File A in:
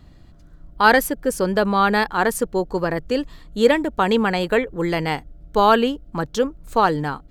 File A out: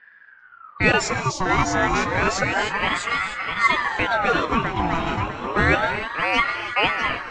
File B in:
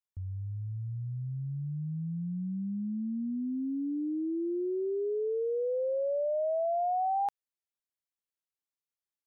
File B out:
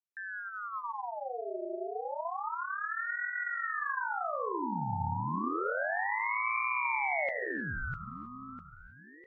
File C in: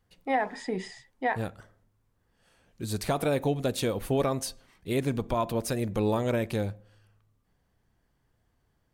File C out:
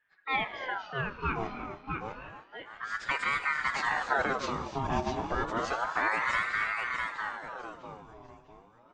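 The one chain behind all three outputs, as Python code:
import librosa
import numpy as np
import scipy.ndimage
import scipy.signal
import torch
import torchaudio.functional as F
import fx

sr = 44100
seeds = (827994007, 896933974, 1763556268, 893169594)

p1 = fx.freq_compress(x, sr, knee_hz=1900.0, ratio=1.5)
p2 = fx.env_lowpass(p1, sr, base_hz=1400.0, full_db=-18.5)
p3 = fx.peak_eq(p2, sr, hz=7000.0, db=4.5, octaves=1.2)
p4 = p3 + fx.echo_feedback(p3, sr, ms=651, feedback_pct=35, wet_db=-4.0, dry=0)
p5 = fx.rev_gated(p4, sr, seeds[0], gate_ms=340, shape='rising', drr_db=8.5)
p6 = fx.ring_lfo(p5, sr, carrier_hz=1100.0, swing_pct=55, hz=0.3)
y = p6 * 10.0 ** (-1.0 / 20.0)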